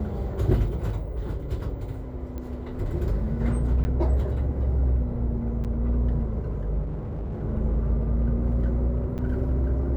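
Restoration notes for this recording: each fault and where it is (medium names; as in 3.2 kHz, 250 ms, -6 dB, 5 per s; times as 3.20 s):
0.90 s: dropout 4 ms
2.38 s: pop -24 dBFS
3.84–3.85 s: dropout 10 ms
5.64–5.65 s: dropout 7.6 ms
6.82–7.43 s: clipped -27.5 dBFS
9.18–9.19 s: dropout 7.2 ms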